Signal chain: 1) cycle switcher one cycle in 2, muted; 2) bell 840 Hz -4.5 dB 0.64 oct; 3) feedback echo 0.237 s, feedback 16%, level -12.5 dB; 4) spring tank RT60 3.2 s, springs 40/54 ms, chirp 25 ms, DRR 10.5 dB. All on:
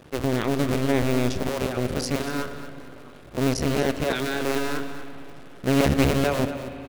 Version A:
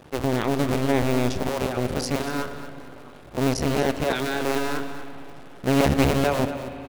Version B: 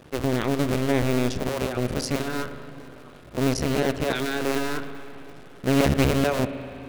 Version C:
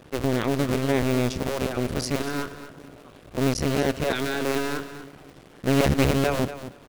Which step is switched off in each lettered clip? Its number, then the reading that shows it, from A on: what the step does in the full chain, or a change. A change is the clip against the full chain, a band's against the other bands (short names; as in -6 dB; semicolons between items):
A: 2, 1 kHz band +2.5 dB; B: 3, echo-to-direct -8.5 dB to -10.5 dB; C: 4, echo-to-direct -8.5 dB to -12.5 dB